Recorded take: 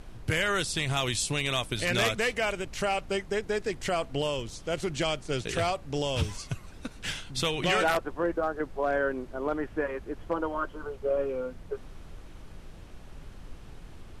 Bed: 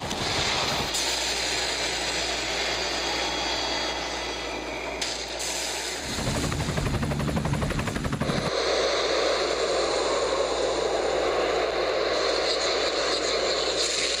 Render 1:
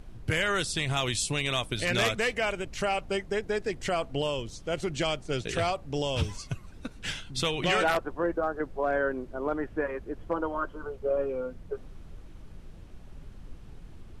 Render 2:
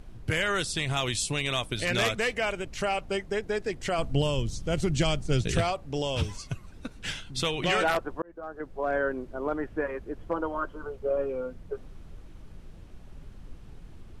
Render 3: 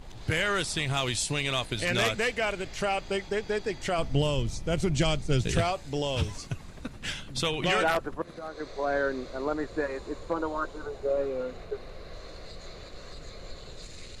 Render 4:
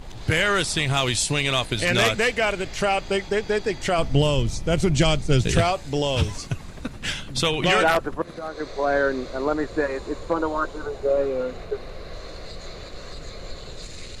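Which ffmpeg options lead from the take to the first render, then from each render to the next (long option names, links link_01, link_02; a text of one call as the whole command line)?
ffmpeg -i in.wav -af "afftdn=noise_reduction=6:noise_floor=-47" out.wav
ffmpeg -i in.wav -filter_complex "[0:a]asettb=1/sr,asplit=3[link_01][link_02][link_03];[link_01]atrim=end=3.984[link_04];[link_02]atrim=start=3.98:end=5.61,asetpts=PTS-STARTPTS,afade=type=in:duration=0.004:curve=qsin,afade=type=out:start_time=1.626:duration=0.004:curve=qsin,bass=frequency=250:gain=11,treble=frequency=4000:gain=5[link_05];[link_03]atrim=start=5.606[link_06];[link_04][link_05]acrossfade=duration=0.004:curve1=hsin:curve2=qsin[link_07];[link_07][link_06]acrossfade=duration=0.004:curve1=qsin:curve2=hsin,asplit=2[link_08][link_09];[link_08]atrim=end=8.22,asetpts=PTS-STARTPTS,afade=type=out:start_time=8.216:duration=0.004:curve=hsin[link_10];[link_09]atrim=start=8.22,asetpts=PTS-STARTPTS,afade=type=in:duration=0.73[link_11];[link_10][link_11]concat=n=2:v=0:a=1" out.wav
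ffmpeg -i in.wav -i bed.wav -filter_complex "[1:a]volume=-22.5dB[link_01];[0:a][link_01]amix=inputs=2:normalize=0" out.wav
ffmpeg -i in.wav -af "volume=6.5dB" out.wav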